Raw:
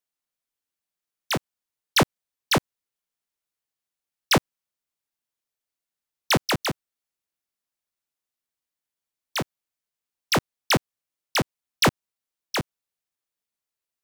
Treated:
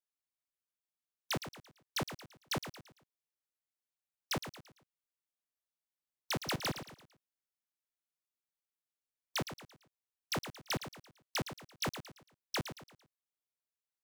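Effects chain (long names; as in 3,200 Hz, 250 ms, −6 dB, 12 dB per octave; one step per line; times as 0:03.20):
brickwall limiter −19 dBFS, peak gain reduction 3.5 dB
soft clipping −23 dBFS, distortion −18 dB
output level in coarse steps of 22 dB
on a send: repeating echo 113 ms, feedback 38%, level −10 dB
on the sum: level +10 dB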